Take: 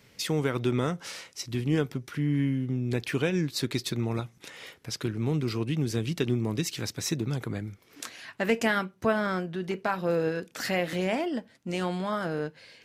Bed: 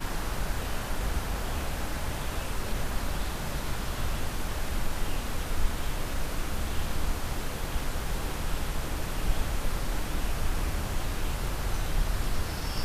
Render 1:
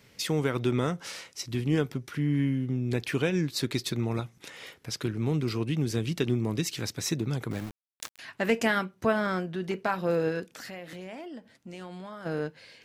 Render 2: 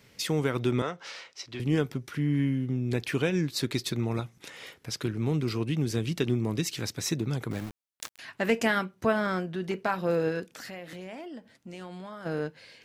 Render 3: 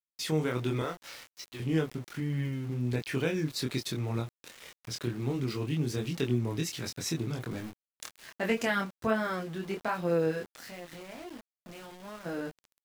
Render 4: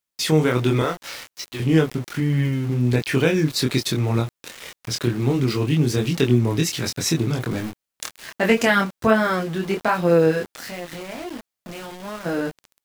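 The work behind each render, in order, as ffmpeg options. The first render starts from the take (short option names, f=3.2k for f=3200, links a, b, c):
-filter_complex "[0:a]asettb=1/sr,asplit=3[a][b][c];[a]atrim=end=7.514[d];[b]atrim=start=7.51:end=8.19,asetpts=PTS-STARTPTS,afade=t=in:d=0.004:c=qsin,afade=t=out:st=0.676:d=0.004:c=qsin,aeval=exprs='val(0)*gte(abs(val(0)),0.0141)':c=same[e];[c]atrim=start=8.186[f];[d][e]acrossfade=d=0.004:c1=hsin:c2=qsin[g];[g][f]acrossfade=d=0.004:c1=qsin:c2=hsin,asplit=3[h][i][j];[h]afade=t=out:st=10.45:d=0.02[k];[i]acompressor=threshold=-44dB:ratio=2.5:attack=3.2:release=140:knee=1:detection=peak,afade=t=in:st=10.45:d=0.02,afade=t=out:st=12.25:d=0.02[l];[j]afade=t=in:st=12.25:d=0.02[m];[k][l][m]amix=inputs=3:normalize=0"
-filter_complex "[0:a]asettb=1/sr,asplit=3[a][b][c];[a]atrim=end=0.824[d];[b]atrim=start=0.82:end=1.6,asetpts=PTS-STARTPTS,afade=t=in:d=0.004:c=qsin,afade=t=out:st=0.776:d=0.004:c=qsin,acrossover=split=390 5800:gain=0.224 1 0.0891[e][f][g];[e][f][g]amix=inputs=3:normalize=0[h];[c]atrim=start=1.596[i];[d][h]acrossfade=d=0.004:c1=hsin:c2=qsin[j];[j][i]acrossfade=d=0.004:c1=qsin:c2=hsin"
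-af "flanger=delay=22.5:depth=3.2:speed=1.3,aeval=exprs='val(0)*gte(abs(val(0)),0.00562)':c=same"
-af "volume=11.5dB"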